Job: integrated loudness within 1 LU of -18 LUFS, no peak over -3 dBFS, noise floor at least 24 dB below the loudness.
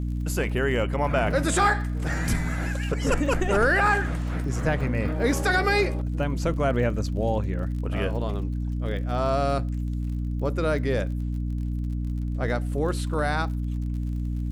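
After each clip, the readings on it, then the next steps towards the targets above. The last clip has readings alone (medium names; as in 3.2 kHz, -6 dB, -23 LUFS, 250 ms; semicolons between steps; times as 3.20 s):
tick rate 38 per s; hum 60 Hz; highest harmonic 300 Hz; hum level -25 dBFS; loudness -26.0 LUFS; peak level -9.0 dBFS; loudness target -18.0 LUFS
-> de-click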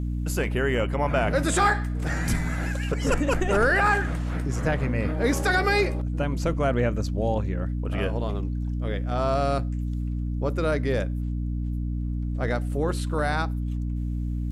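tick rate 0.34 per s; hum 60 Hz; highest harmonic 300 Hz; hum level -25 dBFS
-> hum notches 60/120/180/240/300 Hz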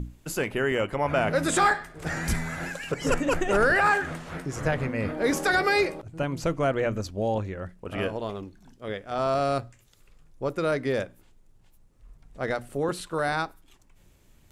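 hum not found; loudness -27.0 LUFS; peak level -10.0 dBFS; loudness target -18.0 LUFS
-> trim +9 dB; peak limiter -3 dBFS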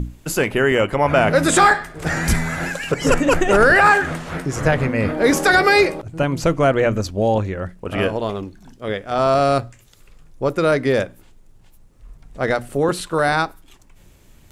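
loudness -18.0 LUFS; peak level -3.0 dBFS; noise floor -49 dBFS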